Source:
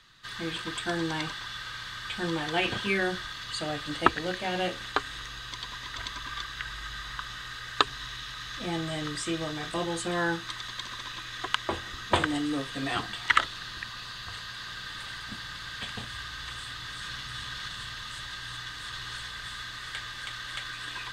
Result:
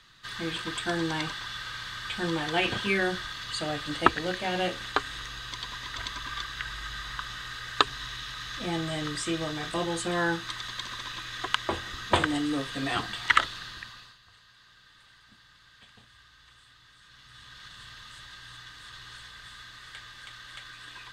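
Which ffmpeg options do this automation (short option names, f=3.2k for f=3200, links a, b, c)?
-af "volume=11.5dB,afade=t=out:st=13.44:d=0.46:silence=0.473151,afade=t=out:st=13.9:d=0.28:silence=0.237137,afade=t=in:st=17.08:d=0.83:silence=0.298538"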